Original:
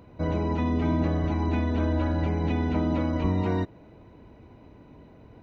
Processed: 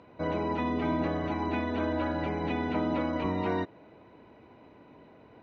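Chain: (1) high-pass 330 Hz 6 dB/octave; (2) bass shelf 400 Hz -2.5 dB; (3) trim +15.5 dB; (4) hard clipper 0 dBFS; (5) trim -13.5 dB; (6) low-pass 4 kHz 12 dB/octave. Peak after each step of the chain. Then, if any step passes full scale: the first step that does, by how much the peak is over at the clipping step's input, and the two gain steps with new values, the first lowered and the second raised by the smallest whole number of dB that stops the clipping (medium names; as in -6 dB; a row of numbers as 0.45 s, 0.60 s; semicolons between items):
-17.0 dBFS, -18.5 dBFS, -3.0 dBFS, -3.0 dBFS, -16.5 dBFS, -16.5 dBFS; nothing clips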